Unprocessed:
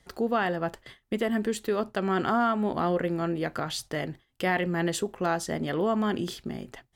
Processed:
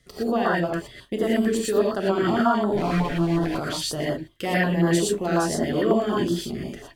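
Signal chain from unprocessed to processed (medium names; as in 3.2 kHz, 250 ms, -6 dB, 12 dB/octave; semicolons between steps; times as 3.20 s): 2.73–3.46 s: comb filter that takes the minimum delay 6.9 ms; gated-style reverb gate 140 ms rising, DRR -5 dB; step-sequenced notch 11 Hz 860–2400 Hz; trim +1 dB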